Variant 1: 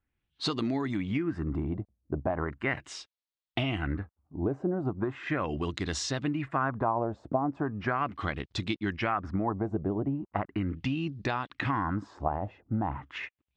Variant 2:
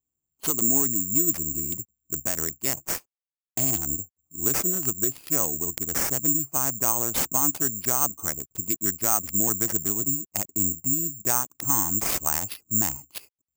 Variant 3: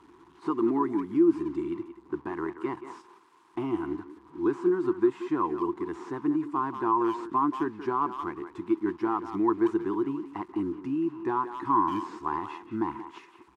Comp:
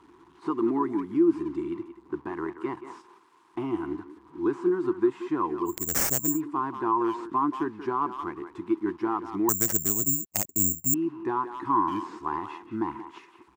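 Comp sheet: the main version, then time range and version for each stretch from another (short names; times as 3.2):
3
5.77–6.29 from 2, crossfade 0.24 s
9.49–10.94 from 2
not used: 1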